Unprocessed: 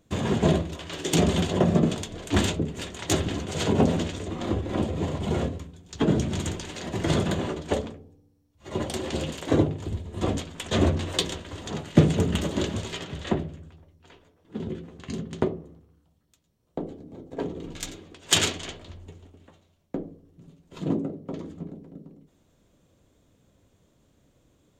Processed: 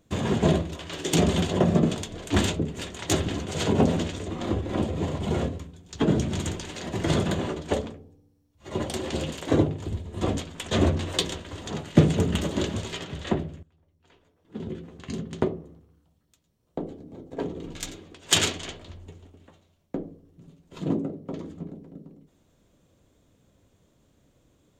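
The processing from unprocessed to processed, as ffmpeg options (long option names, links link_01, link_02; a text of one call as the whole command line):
ffmpeg -i in.wav -filter_complex "[0:a]asplit=2[link_01][link_02];[link_01]atrim=end=13.63,asetpts=PTS-STARTPTS,afade=type=out:start_time=13.626:duration=0.004:curve=hsin:silence=0.105925[link_03];[link_02]atrim=start=13.63,asetpts=PTS-STARTPTS,afade=type=in:duration=1.3:silence=0.105925[link_04];[link_03][link_04]concat=n=2:v=0:a=1" out.wav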